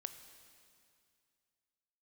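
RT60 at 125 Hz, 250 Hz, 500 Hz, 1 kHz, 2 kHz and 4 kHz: 2.5, 2.4, 2.3, 2.3, 2.3, 2.3 seconds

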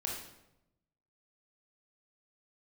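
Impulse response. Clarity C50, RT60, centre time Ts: 3.0 dB, 0.90 s, 46 ms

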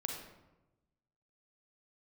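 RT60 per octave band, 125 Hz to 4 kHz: 1.4, 1.2, 1.1, 0.95, 0.80, 0.60 seconds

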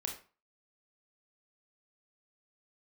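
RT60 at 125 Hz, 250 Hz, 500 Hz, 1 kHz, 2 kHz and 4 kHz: 0.40, 0.35, 0.35, 0.40, 0.35, 0.30 seconds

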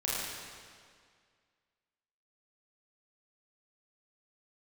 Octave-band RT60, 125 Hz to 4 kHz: 2.0, 2.0, 2.0, 2.0, 1.9, 1.8 seconds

